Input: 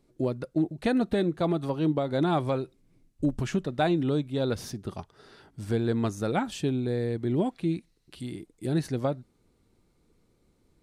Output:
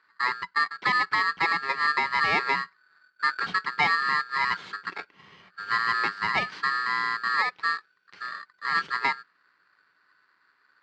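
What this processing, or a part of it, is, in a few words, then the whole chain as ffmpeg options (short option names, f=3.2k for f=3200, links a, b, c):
ring modulator pedal into a guitar cabinet: -af "aeval=exprs='val(0)*sgn(sin(2*PI*1500*n/s))':c=same,highpass=99,equalizer=f=180:t=q:w=4:g=9,equalizer=f=400:t=q:w=4:g=9,equalizer=f=640:t=q:w=4:g=-3,equalizer=f=950:t=q:w=4:g=4,equalizer=f=2.2k:t=q:w=4:g=4,lowpass=f=4.3k:w=0.5412,lowpass=f=4.3k:w=1.3066"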